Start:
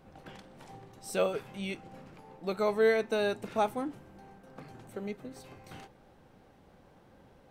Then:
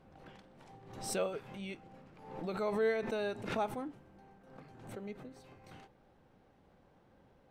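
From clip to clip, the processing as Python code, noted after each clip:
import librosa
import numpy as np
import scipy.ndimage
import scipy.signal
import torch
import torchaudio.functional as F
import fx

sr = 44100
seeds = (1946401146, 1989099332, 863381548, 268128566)

y = fx.high_shelf(x, sr, hz=6800.0, db=-9.0)
y = fx.pre_swell(y, sr, db_per_s=67.0)
y = y * librosa.db_to_amplitude(-6.5)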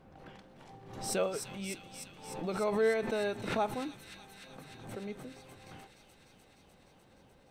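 y = fx.echo_wet_highpass(x, sr, ms=300, feedback_pct=78, hz=3200.0, wet_db=-5)
y = y * librosa.db_to_amplitude(3.0)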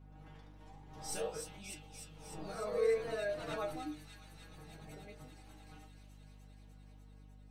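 y = fx.stiff_resonator(x, sr, f0_hz=150.0, decay_s=0.29, stiffness=0.002)
y = fx.echo_pitch(y, sr, ms=95, semitones=1, count=2, db_per_echo=-6.0)
y = fx.add_hum(y, sr, base_hz=50, snr_db=14)
y = y * librosa.db_to_amplitude(4.0)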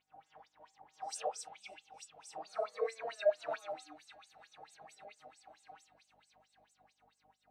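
y = fx.peak_eq(x, sr, hz=730.0, db=7.0, octaves=0.35)
y = fx.filter_lfo_bandpass(y, sr, shape='sine', hz=4.5, low_hz=600.0, high_hz=7800.0, q=5.7)
y = y * librosa.db_to_amplitude(10.0)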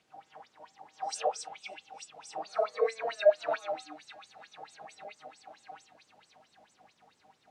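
y = fx.dmg_noise_colour(x, sr, seeds[0], colour='pink', level_db=-78.0)
y = fx.bandpass_edges(y, sr, low_hz=150.0, high_hz=6800.0)
y = y * librosa.db_to_amplitude(7.5)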